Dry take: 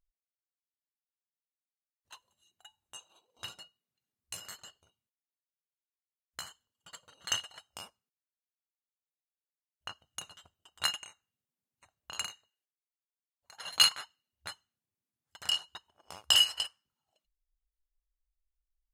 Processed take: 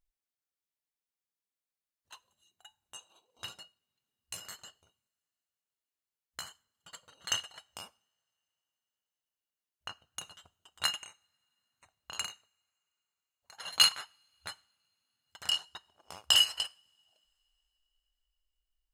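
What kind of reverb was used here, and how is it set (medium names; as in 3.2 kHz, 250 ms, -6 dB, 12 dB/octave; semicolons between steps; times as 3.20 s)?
two-slope reverb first 0.45 s, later 4.4 s, from -28 dB, DRR 19.5 dB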